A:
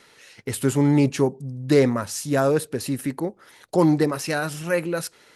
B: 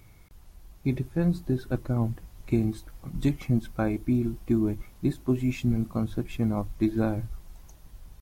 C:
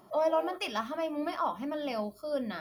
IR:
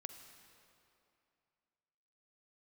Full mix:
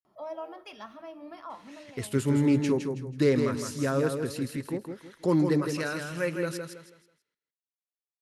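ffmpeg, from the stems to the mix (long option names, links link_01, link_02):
-filter_complex "[0:a]equalizer=frequency=750:width=3:gain=-10,adelay=1500,volume=-5.5dB,asplit=2[link_01][link_02];[link_02]volume=-6dB[link_03];[2:a]adelay=50,volume=-13.5dB,afade=type=out:start_time=1.66:duration=0.3:silence=0.473151,asplit=2[link_04][link_05];[link_05]volume=-3.5dB[link_06];[3:a]atrim=start_sample=2205[link_07];[link_06][link_07]afir=irnorm=-1:irlink=0[link_08];[link_03]aecho=0:1:162|324|486|648:1|0.31|0.0961|0.0298[link_09];[link_01][link_04][link_08][link_09]amix=inputs=4:normalize=0,highshelf=frequency=9000:gain=-10"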